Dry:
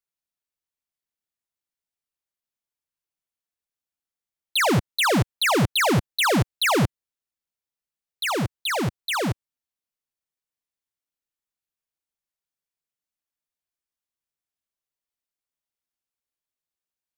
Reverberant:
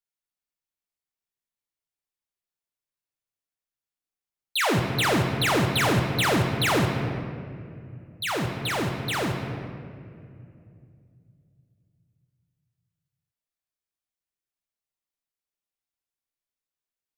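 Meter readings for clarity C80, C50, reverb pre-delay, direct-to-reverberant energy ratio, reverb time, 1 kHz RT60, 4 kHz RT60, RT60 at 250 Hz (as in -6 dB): 5.5 dB, 4.5 dB, 3 ms, 2.0 dB, 2.6 s, 2.2 s, 1.3 s, 3.5 s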